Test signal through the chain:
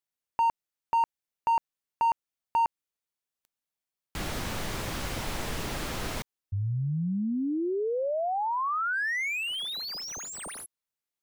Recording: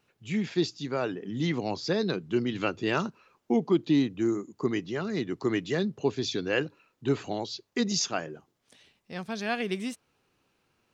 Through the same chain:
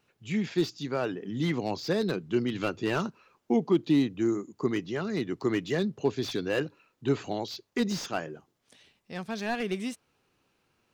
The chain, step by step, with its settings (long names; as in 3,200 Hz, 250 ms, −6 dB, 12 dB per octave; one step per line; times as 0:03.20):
slew-rate limiting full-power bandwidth 75 Hz